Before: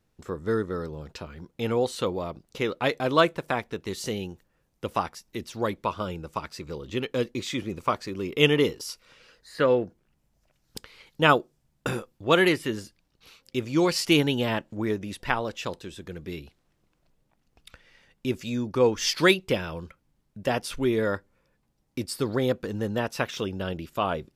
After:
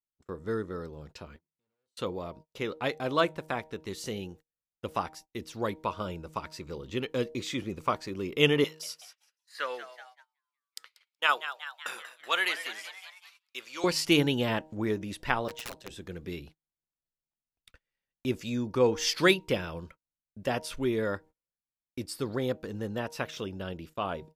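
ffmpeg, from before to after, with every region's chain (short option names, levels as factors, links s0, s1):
-filter_complex "[0:a]asettb=1/sr,asplit=3[s0][s1][s2];[s0]atrim=end=1.364[s3];[s1]atrim=start=1.36:end=1.97,asetpts=PTS-STARTPTS,afade=t=in:d=0.004:c=qsin,afade=t=out:st=0.606:d=0.004:c=qsin,volume=47.3,asoftclip=hard,volume=0.0211,acompressor=threshold=0.00282:ratio=5:attack=3.2:release=140:knee=1:detection=peak,highpass=f=90:p=1[s4];[s2]atrim=start=1.966[s5];[s3][s4]acrossfade=d=0.004:c1=hsin:c2=qsin[s6];[s6][s5]acrossfade=d=0.004:c1=qsin:c2=hsin,asettb=1/sr,asplit=3[s7][s8][s9];[s7]atrim=end=8.644[s10];[s8]atrim=start=8.64:end=13.84,asetpts=PTS-STARTPTS,afade=t=in:d=0.004:c=qsin,afade=t=out:st=5.196:d=0.004:c=qsin,highpass=1100,asplit=8[s11][s12][s13][s14][s15][s16][s17][s18];[s12]adelay=187,afreqshift=130,volume=0.251[s19];[s13]adelay=374,afreqshift=260,volume=0.153[s20];[s14]adelay=561,afreqshift=390,volume=0.0933[s21];[s15]adelay=748,afreqshift=520,volume=0.0569[s22];[s16]adelay=935,afreqshift=650,volume=0.0347[s23];[s17]adelay=1122,afreqshift=780,volume=0.0211[s24];[s18]adelay=1309,afreqshift=910,volume=0.0129[s25];[s11][s19][s20][s21][s22][s23][s24][s25]amix=inputs=8:normalize=0,atrim=end_sample=229320[s26];[s9]atrim=start=13.836[s27];[s10][s26]acrossfade=d=0.004:c1=hsin:c2=qsin[s28];[s28][s27]acrossfade=d=0.004:c1=qsin:c2=hsin,asettb=1/sr,asplit=3[s29][s30][s31];[s29]atrim=end=15.484[s32];[s30]atrim=start=15.48:end=15.9,asetpts=PTS-STARTPTS,afade=t=in:d=0.004:c=qsin,afade=t=out:st=0.416:d=0.004:c=qsin,afreqshift=63,aeval=exprs='(mod(23.7*val(0)+1,2)-1)/23.7':c=same,aeval=exprs='val(0)*sin(2*PI*60*n/s)':c=same[s33];[s31]atrim=start=15.896[s34];[s32][s33]acrossfade=d=0.004:c1=hsin:c2=qsin[s35];[s35][s34]acrossfade=d=0.004:c1=qsin:c2=hsin,bandreject=f=156.6:t=h:w=4,bandreject=f=313.2:t=h:w=4,bandreject=f=469.8:t=h:w=4,bandreject=f=626.4:t=h:w=4,bandreject=f=783:t=h:w=4,bandreject=f=939.6:t=h:w=4,dynaudnorm=f=590:g=17:m=3.55,agate=range=0.0316:threshold=0.00631:ratio=16:detection=peak,volume=0.501"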